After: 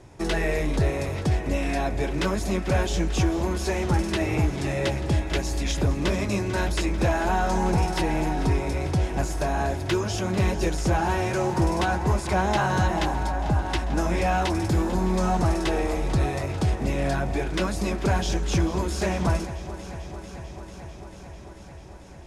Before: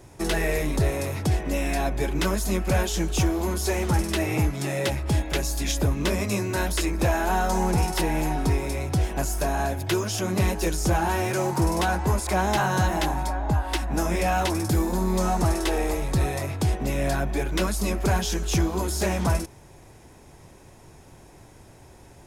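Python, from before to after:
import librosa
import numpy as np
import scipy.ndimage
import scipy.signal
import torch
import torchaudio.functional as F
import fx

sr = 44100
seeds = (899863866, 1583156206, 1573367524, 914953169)

y = fx.air_absorb(x, sr, metres=58.0)
y = fx.echo_alternate(y, sr, ms=222, hz=870.0, feedback_pct=88, wet_db=-13.5)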